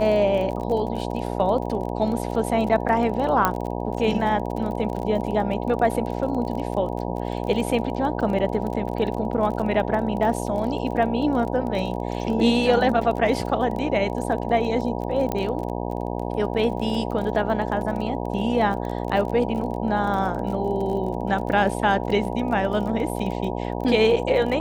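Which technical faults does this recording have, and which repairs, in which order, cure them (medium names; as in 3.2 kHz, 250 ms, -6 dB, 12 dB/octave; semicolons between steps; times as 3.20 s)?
buzz 60 Hz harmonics 16 -28 dBFS
crackle 33 per s -30 dBFS
3.45 s: pop -5 dBFS
15.32 s: pop -11 dBFS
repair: de-click; de-hum 60 Hz, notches 16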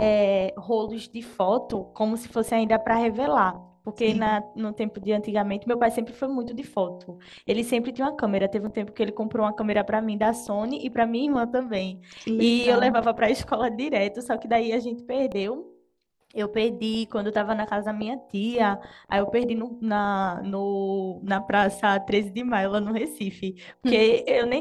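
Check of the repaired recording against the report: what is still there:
15.32 s: pop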